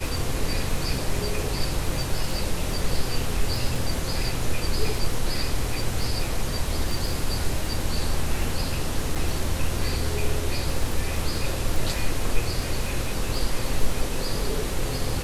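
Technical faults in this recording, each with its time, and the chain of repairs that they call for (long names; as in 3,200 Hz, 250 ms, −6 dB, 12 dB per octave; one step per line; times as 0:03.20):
surface crackle 28 per second −28 dBFS
0:09.15–0:09.16: drop-out 6.6 ms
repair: click removal
repair the gap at 0:09.15, 6.6 ms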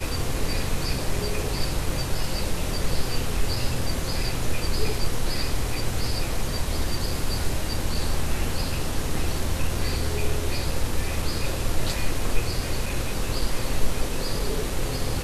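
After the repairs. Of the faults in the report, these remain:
none of them is left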